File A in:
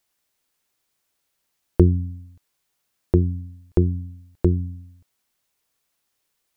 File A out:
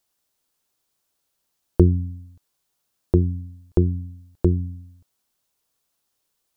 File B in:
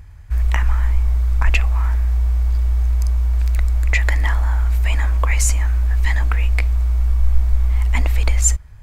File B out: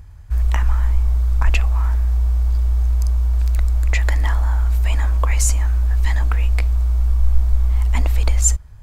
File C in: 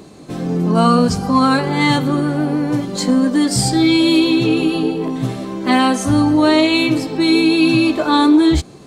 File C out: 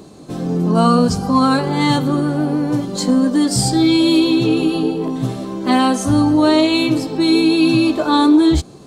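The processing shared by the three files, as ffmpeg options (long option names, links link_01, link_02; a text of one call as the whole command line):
ffmpeg -i in.wav -af "equalizer=frequency=2100:width=1.7:gain=-6" out.wav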